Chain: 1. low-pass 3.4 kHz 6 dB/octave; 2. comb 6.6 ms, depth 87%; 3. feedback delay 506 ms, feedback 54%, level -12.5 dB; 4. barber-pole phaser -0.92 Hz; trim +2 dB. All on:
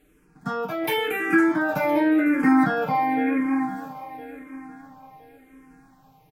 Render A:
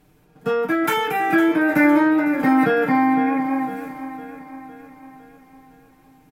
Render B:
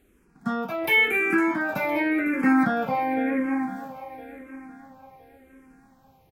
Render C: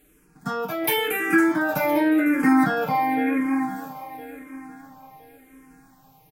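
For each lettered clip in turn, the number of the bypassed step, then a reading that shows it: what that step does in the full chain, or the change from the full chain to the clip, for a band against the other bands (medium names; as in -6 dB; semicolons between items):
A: 4, 125 Hz band -2.0 dB; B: 2, 2 kHz band +5.5 dB; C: 1, 4 kHz band +2.5 dB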